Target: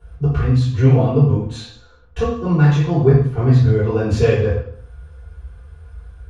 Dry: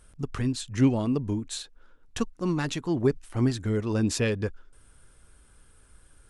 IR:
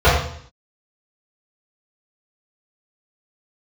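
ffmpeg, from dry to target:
-filter_complex "[1:a]atrim=start_sample=2205[link_01];[0:a][link_01]afir=irnorm=-1:irlink=0,volume=-17.5dB"

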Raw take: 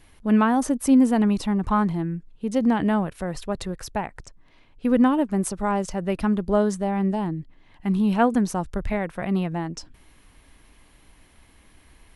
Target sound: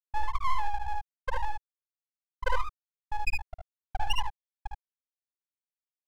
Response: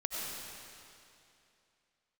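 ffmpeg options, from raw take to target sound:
-filter_complex "[0:a]highpass=42,bandreject=frequency=60:width_type=h:width=6,bandreject=frequency=120:width_type=h:width=6,bandreject=frequency=180:width_type=h:width=6,bandreject=frequency=240:width_type=h:width=6,afftfilt=real='re*gte(hypot(re,im),1)':imag='im*gte(hypot(re,im),1)':win_size=1024:overlap=0.75,equalizer=frequency=180:width=0.6:gain=2.5,acrossover=split=150|400|1800[link_01][link_02][link_03][link_04];[link_02]acompressor=threshold=-33dB:ratio=6[link_05];[link_01][link_05][link_03][link_04]amix=inputs=4:normalize=0,aeval=exprs='abs(val(0))':channel_layout=same,asetrate=88200,aresample=44100,aecho=1:1:56|74:0.447|0.631"

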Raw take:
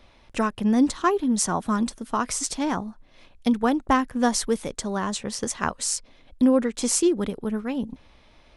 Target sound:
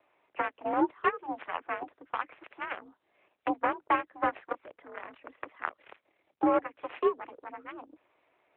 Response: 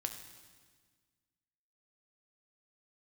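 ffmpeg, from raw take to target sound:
-filter_complex "[0:a]asettb=1/sr,asplit=3[link_01][link_02][link_03];[link_01]atrim=end=4.494[link_04];[link_02]atrim=start=4.49:end=6.43,asetpts=PTS-STARTPTS,afade=type=in:duration=0.004:curve=qsin,afade=type=out:start_time=1.936:duration=0.004:curve=qsin,tremolo=f=37:d=0.519[link_05];[link_03]atrim=start=6.426[link_06];[link_04][link_05]acrossfade=duration=0.004:curve1=hsin:curve2=qsin[link_07];[link_07][link_06]acrossfade=duration=0.004:curve1=qsin:curve2=hsin,aeval=exprs='0.473*(cos(1*acos(clip(val(0)/0.473,-1,1)))-cos(1*PI/2))+0.0531*(cos(2*acos(clip(val(0)/0.473,-1,1)))-cos(2*PI/2))+0.0075*(cos(3*acos(clip(val(0)/0.473,-1,1)))-cos(3*PI/2))+0.0106*(cos(5*acos(clip(val(0)/0.473,-1,1)))-cos(5*PI/2))+0.0944*(cos(7*acos(clip(val(0)/0.473,-1,1)))-cos(7*PI/2))':channel_layout=same,highpass=frequency=280:width_type=q:width=0.5412,highpass=frequency=280:width_type=q:width=1.307,lowpass=frequency=2600:width_type=q:width=0.5176,lowpass=frequency=2600:width_type=q:width=0.7071,lowpass=frequency=2600:width_type=q:width=1.932,afreqshift=51,asplit=2[link_08][link_09];[link_09]acompressor=threshold=-33dB:ratio=5,volume=-1dB[link_10];[link_08][link_10]amix=inputs=2:normalize=0,volume=-5dB" -ar 8000 -c:a libopencore_amrnb -b:a 12200

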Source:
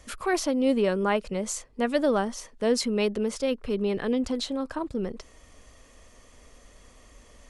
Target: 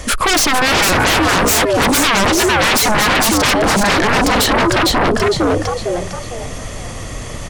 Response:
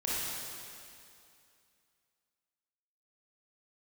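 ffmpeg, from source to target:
-filter_complex "[0:a]asplit=5[link_01][link_02][link_03][link_04][link_05];[link_02]adelay=455,afreqshift=82,volume=-4dB[link_06];[link_03]adelay=910,afreqshift=164,volume=-13.6dB[link_07];[link_04]adelay=1365,afreqshift=246,volume=-23.3dB[link_08];[link_05]adelay=1820,afreqshift=328,volume=-32.9dB[link_09];[link_01][link_06][link_07][link_08][link_09]amix=inputs=5:normalize=0,aeval=exprs='0.316*sin(PI/2*10*val(0)/0.316)':channel_layout=same"

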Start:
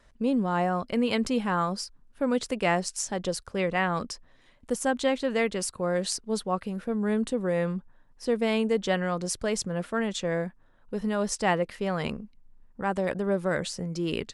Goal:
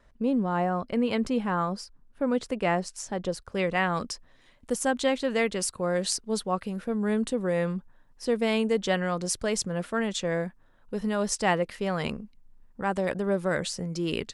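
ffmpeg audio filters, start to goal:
ffmpeg -i in.wav -af "asetnsamples=nb_out_samples=441:pad=0,asendcmd='3.52 highshelf g 2.5',highshelf=frequency=2600:gain=-7.5" out.wav

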